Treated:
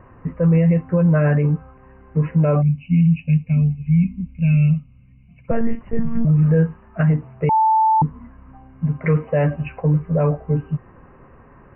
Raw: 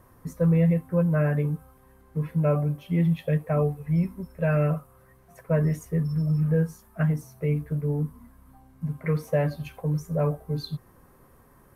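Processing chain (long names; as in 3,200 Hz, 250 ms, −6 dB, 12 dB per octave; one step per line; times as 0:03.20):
0:02.62–0:05.48: gain on a spectral selection 260–2,100 Hz −27 dB
0:05.51–0:06.25: one-pitch LPC vocoder at 8 kHz 230 Hz
linear-phase brick-wall low-pass 3,000 Hz
0:07.49–0:08.02: beep over 880 Hz −21.5 dBFS
boost into a limiter +18 dB
level −8.5 dB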